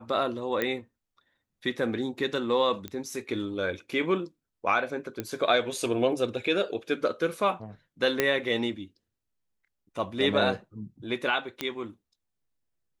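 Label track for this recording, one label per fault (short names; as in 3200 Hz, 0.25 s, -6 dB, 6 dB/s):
0.620000	0.620000	pop -14 dBFS
2.880000	2.880000	pop -21 dBFS
5.200000	5.200000	pop -17 dBFS
8.200000	8.200000	pop -8 dBFS
11.610000	11.610000	pop -14 dBFS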